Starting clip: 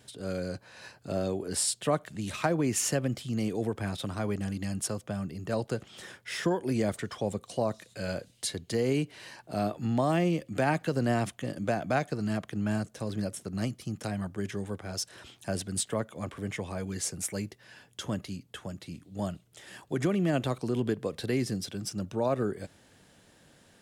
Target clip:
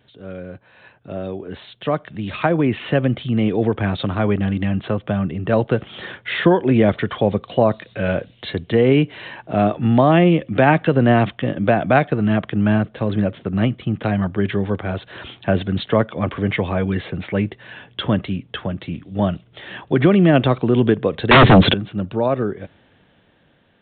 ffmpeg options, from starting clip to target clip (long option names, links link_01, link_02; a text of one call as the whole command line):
ffmpeg -i in.wav -filter_complex "[0:a]dynaudnorm=framelen=510:gausssize=9:maxgain=15dB,asettb=1/sr,asplit=3[link_01][link_02][link_03];[link_01]atrim=end=21.314[link_04];[link_02]atrim=start=21.31:end=21.74,asetpts=PTS-STARTPTS,afade=type=in:duration=0.004:curve=qsin,afade=type=out:start_time=0.426:duration=0.004:curve=qsin,aeval=exprs='0.531*sin(PI/2*6.31*val(0)/0.531)':channel_layout=same[link_05];[link_03]atrim=start=21.736[link_06];[link_04][link_05]acrossfade=duration=0.004:curve1=hsin:curve2=qsin[link_07];[link_07][link_06]acrossfade=duration=0.004:curve1=qsin:curve2=hsin,aresample=8000,aresample=44100,volume=1dB" out.wav